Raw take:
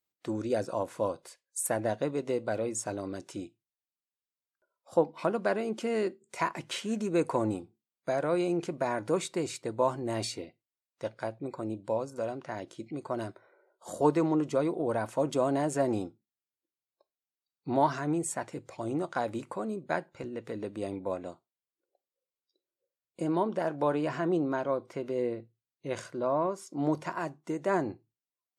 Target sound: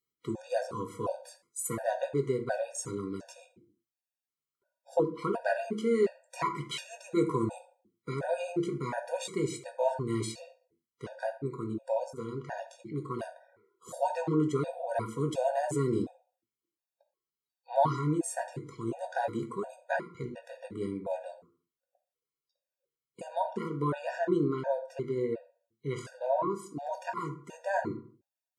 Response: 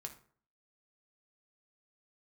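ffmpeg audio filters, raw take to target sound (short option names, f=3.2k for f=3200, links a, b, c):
-filter_complex "[1:a]atrim=start_sample=2205,afade=t=out:st=0.42:d=0.01,atrim=end_sample=18963[a];[0:a][a]afir=irnorm=-1:irlink=0,afftfilt=real='re*gt(sin(2*PI*1.4*pts/sr)*(1-2*mod(floor(b*sr/1024/480),2)),0)':imag='im*gt(sin(2*PI*1.4*pts/sr)*(1-2*mod(floor(b*sr/1024/480),2)),0)':win_size=1024:overlap=0.75,volume=5.5dB"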